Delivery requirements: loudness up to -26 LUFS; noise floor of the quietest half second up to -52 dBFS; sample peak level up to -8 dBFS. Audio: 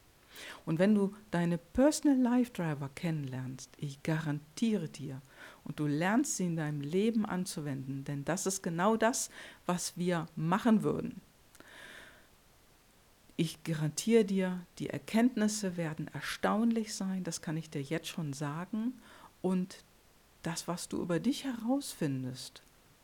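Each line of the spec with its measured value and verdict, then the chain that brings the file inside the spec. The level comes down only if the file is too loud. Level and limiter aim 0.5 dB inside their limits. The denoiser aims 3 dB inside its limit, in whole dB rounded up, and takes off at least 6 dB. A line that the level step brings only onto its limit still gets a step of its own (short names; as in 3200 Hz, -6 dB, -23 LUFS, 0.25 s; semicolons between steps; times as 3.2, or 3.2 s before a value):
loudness -33.5 LUFS: OK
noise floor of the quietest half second -64 dBFS: OK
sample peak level -14.5 dBFS: OK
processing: none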